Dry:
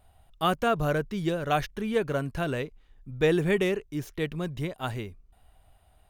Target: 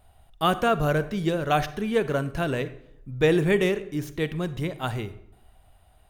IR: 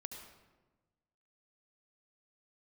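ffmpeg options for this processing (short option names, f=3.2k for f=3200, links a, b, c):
-filter_complex "[0:a]asplit=2[a][b];[1:a]atrim=start_sample=2205,asetrate=79380,aresample=44100[c];[b][c]afir=irnorm=-1:irlink=0,volume=2dB[d];[a][d]amix=inputs=2:normalize=0"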